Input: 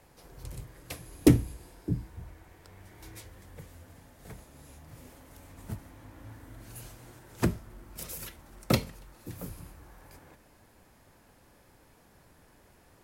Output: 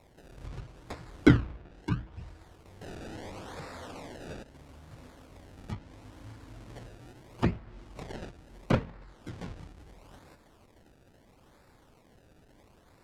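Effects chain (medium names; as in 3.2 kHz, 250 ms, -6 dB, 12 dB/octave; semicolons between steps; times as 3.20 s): 2.81–4.43 s: overdrive pedal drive 28 dB, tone 4.6 kHz, clips at -33.5 dBFS; decimation with a swept rate 28×, swing 100% 0.75 Hz; low-pass that closes with the level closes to 2.7 kHz, closed at -31 dBFS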